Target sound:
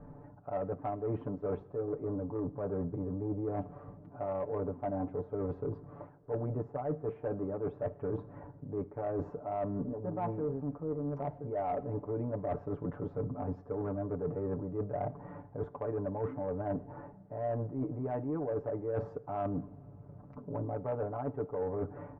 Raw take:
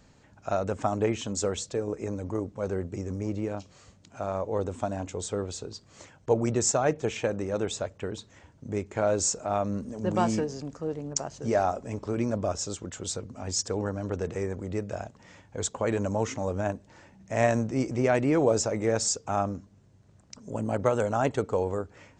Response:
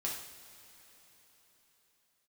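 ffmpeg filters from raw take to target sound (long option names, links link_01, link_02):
-filter_complex "[0:a]lowpass=frequency=1100:width=0.5412,lowpass=frequency=1100:width=1.3066,aecho=1:1:6.9:0.84,areverse,acompressor=threshold=-37dB:ratio=16,areverse,asoftclip=type=tanh:threshold=-31.5dB,asplit=2[link_01][link_02];[1:a]atrim=start_sample=2205[link_03];[link_02][link_03]afir=irnorm=-1:irlink=0,volume=-15.5dB[link_04];[link_01][link_04]amix=inputs=2:normalize=0,volume=5.5dB"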